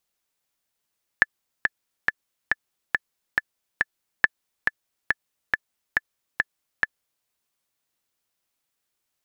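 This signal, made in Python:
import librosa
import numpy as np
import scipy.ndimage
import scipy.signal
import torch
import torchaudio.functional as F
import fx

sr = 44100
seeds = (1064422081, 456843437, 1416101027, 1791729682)

y = fx.click_track(sr, bpm=139, beats=7, bars=2, hz=1740.0, accent_db=5.0, level_db=-1.5)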